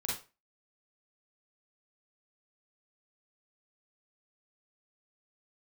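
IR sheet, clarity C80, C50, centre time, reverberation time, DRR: 10.5 dB, 2.0 dB, 43 ms, 0.30 s, −4.5 dB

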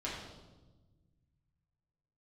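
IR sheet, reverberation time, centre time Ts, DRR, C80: 1.2 s, 60 ms, −7.0 dB, 4.0 dB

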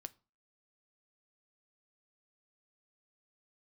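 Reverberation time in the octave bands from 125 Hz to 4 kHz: 0.40, 0.40, 0.35, 0.35, 0.25, 0.25 seconds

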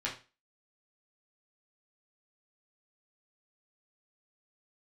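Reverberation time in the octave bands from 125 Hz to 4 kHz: 0.30, 0.30, 0.30, 0.30, 0.30, 0.30 seconds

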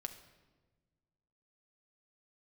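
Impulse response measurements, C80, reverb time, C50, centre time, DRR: 12.5 dB, 1.3 s, 10.5 dB, 13 ms, 6.0 dB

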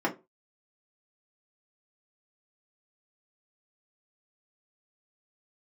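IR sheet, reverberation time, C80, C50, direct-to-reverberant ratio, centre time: 0.25 s, 22.0 dB, 15.0 dB, −3.5 dB, 13 ms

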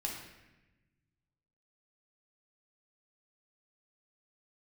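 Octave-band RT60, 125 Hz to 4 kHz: 2.2, 1.6, 1.1, 0.95, 1.2, 0.85 seconds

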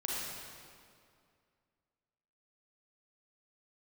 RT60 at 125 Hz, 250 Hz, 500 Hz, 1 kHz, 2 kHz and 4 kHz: 2.4, 2.4, 2.3, 2.2, 1.9, 1.7 seconds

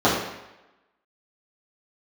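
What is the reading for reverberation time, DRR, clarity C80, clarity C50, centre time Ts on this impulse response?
0.95 s, −10.0 dB, 5.5 dB, 3.0 dB, 51 ms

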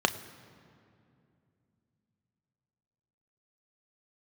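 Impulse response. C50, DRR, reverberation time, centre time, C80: 14.5 dB, 9.0 dB, 2.6 s, 11 ms, 15.0 dB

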